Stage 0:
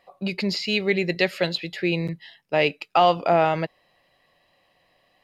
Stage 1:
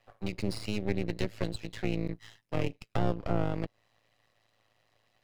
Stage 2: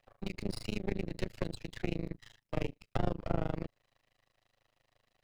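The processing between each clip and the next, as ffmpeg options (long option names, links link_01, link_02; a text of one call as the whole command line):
ffmpeg -i in.wav -filter_complex "[0:a]aeval=exprs='max(val(0),0)':channel_layout=same,tremolo=f=110:d=0.824,acrossover=split=490[link_01][link_02];[link_02]acompressor=threshold=-40dB:ratio=4[link_03];[link_01][link_03]amix=inputs=2:normalize=0" out.wav
ffmpeg -i in.wav -af "tremolo=f=26:d=1" out.wav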